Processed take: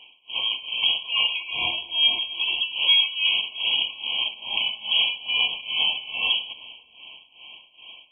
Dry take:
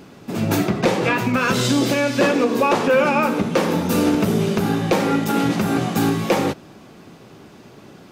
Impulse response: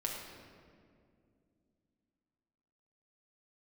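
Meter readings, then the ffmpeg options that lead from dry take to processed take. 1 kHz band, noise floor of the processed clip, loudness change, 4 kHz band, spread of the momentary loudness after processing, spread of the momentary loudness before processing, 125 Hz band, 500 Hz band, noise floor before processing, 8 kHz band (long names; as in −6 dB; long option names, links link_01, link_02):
−17.5 dB, −56 dBFS, −3.0 dB, +11.5 dB, 7 LU, 4 LU, below −30 dB, −29.0 dB, −45 dBFS, below −40 dB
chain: -filter_complex "[0:a]highpass=230,aemphasis=mode=reproduction:type=riaa,acrossover=split=2800[link_01][link_02];[link_02]acompressor=threshold=-40dB:ratio=4:attack=1:release=60[link_03];[link_01][link_03]amix=inputs=2:normalize=0,lowshelf=frequency=380:gain=-11,alimiter=limit=-19dB:level=0:latency=1:release=14,dynaudnorm=framelen=120:gausssize=5:maxgain=5dB,lowpass=frequency=3200:width_type=q:width=0.5098,lowpass=frequency=3200:width_type=q:width=0.6013,lowpass=frequency=3200:width_type=q:width=0.9,lowpass=frequency=3200:width_type=q:width=2.563,afreqshift=-3800,tremolo=f=2.4:d=0.89,asuperstop=centerf=1800:order=4:qfactor=2.2,asplit=2[link_04][link_05];[1:a]atrim=start_sample=2205[link_06];[link_05][link_06]afir=irnorm=-1:irlink=0,volume=-15dB[link_07];[link_04][link_07]amix=inputs=2:normalize=0,afftfilt=real='re*eq(mod(floor(b*sr/1024/1100),2),0)':imag='im*eq(mod(floor(b*sr/1024/1100),2),0)':win_size=1024:overlap=0.75,volume=5dB"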